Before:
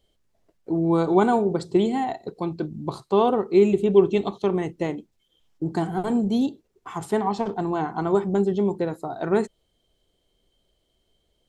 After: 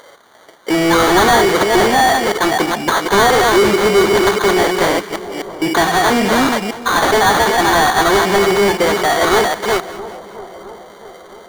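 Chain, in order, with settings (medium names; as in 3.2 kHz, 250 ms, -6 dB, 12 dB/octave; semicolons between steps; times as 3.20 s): chunks repeated in reverse 258 ms, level -7.5 dB; tilt EQ +4 dB/octave; sample-rate reducer 2.6 kHz, jitter 0%; overdrive pedal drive 29 dB, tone 6.8 kHz, clips at -8.5 dBFS; on a send: two-band feedback delay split 1.2 kHz, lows 666 ms, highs 195 ms, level -16 dB; on the sum: trim +4.5 dB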